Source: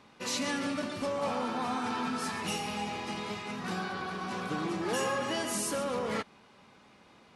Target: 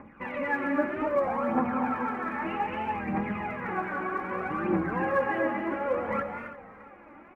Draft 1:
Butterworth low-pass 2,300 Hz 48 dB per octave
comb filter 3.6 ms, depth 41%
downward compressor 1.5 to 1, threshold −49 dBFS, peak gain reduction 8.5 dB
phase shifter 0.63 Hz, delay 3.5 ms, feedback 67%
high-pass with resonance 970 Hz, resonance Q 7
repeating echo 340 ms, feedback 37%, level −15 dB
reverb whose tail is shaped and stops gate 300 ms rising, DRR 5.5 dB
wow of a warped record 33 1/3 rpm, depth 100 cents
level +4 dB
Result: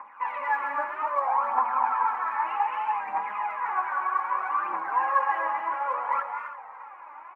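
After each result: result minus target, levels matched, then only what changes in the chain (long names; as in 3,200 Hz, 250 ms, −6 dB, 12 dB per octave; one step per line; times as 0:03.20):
1,000 Hz band +4.5 dB; downward compressor: peak gain reduction +3 dB
remove: high-pass with resonance 970 Hz, resonance Q 7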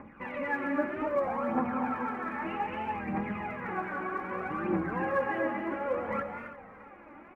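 downward compressor: peak gain reduction +3 dB
change: downward compressor 1.5 to 1, threshold −40 dBFS, peak gain reduction 5.5 dB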